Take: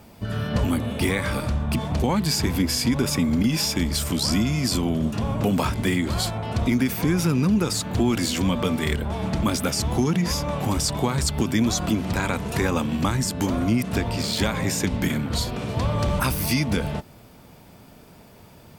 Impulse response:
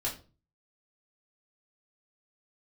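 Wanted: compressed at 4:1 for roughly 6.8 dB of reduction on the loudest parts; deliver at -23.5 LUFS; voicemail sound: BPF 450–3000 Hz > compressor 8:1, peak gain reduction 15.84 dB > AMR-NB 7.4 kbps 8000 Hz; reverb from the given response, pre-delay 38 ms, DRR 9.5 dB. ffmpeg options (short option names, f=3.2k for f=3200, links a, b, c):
-filter_complex "[0:a]acompressor=threshold=-25dB:ratio=4,asplit=2[a][b];[1:a]atrim=start_sample=2205,adelay=38[c];[b][c]afir=irnorm=-1:irlink=0,volume=-13.5dB[d];[a][d]amix=inputs=2:normalize=0,highpass=450,lowpass=3k,acompressor=threshold=-43dB:ratio=8,volume=25dB" -ar 8000 -c:a libopencore_amrnb -b:a 7400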